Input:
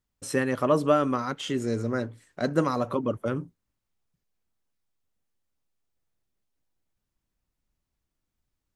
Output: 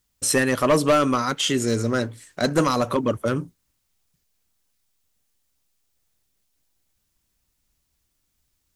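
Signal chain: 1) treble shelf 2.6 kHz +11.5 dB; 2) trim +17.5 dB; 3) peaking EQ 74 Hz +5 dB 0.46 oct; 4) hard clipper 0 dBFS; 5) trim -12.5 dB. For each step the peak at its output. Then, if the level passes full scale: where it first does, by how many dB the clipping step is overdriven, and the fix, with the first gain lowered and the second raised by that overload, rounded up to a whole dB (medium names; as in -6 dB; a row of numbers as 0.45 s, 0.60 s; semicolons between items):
-7.5 dBFS, +10.0 dBFS, +10.0 dBFS, 0.0 dBFS, -12.5 dBFS; step 2, 10.0 dB; step 2 +7.5 dB, step 5 -2.5 dB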